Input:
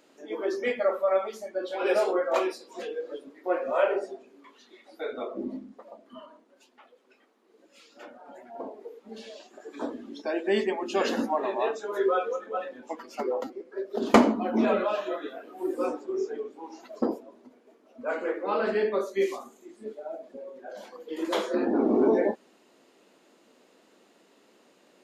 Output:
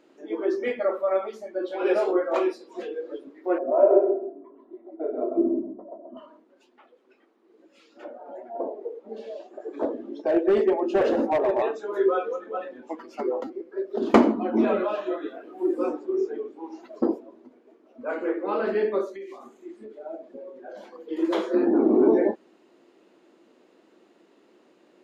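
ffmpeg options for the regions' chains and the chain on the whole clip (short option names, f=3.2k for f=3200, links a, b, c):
-filter_complex "[0:a]asettb=1/sr,asplit=3[a][b][c];[a]atrim=end=3.584[d];[b]atrim=start=3.58:end=6.17,asetpts=PTS-STARTPTS,afade=t=in:d=0.004:c=qsin,afade=t=out:st=2.586:d=0.004:c=qsin,lowpass=f=620:t=q:w=1.6,aecho=1:1:3:0.64,atrim=end_sample=114219,aecho=1:1:133|266|399:0.562|0.118|0.0248,atrim=end_sample=114219[e];[c]atrim=start=6.166[f];[d][e]acrossfade=d=0.004:c1=hsin:c2=qsin[g];[g][f]acrossfade=d=0.004:c1=qsin:c2=hsin,asettb=1/sr,asplit=3[h][i][j];[h]atrim=end=8.044[k];[i]atrim=start=8.04:end=11.62,asetpts=PTS-STARTPTS,afade=t=in:d=0.004:c=qsin,afade=t=out:st=3.576:d=0.004:c=qsin,equalizer=f=570:w=1:g=14,flanger=delay=3:depth=1.9:regen=-87:speed=1.9:shape=sinusoidal,asoftclip=type=hard:threshold=-18.5dB[l];[j]atrim=start=11.616[m];[k][l]acrossfade=d=0.004:c1=hsin:c2=qsin[n];[n][m]acrossfade=d=0.004:c1=qsin:c2=hsin,asettb=1/sr,asplit=3[o][p][q];[o]atrim=end=19.154[r];[p]atrim=start=19.15:end=20,asetpts=PTS-STARTPTS,afade=t=in:d=0.004:c=qsin,afade=t=out:st=0.846:d=0.004:c=qsin,equalizer=f=2.1k:t=o:w=1.5:g=3.5,acompressor=threshold=-39dB:ratio=8:attack=3.2:release=140:knee=1:detection=peak[s];[q]atrim=start=19.996[t];[r][s]acrossfade=d=0.004:c1=hsin:c2=qsin[u];[u][t]acrossfade=d=0.004:c1=qsin:c2=hsin,lowpass=f=2.8k:p=1,equalizer=f=340:t=o:w=0.35:g=8.5"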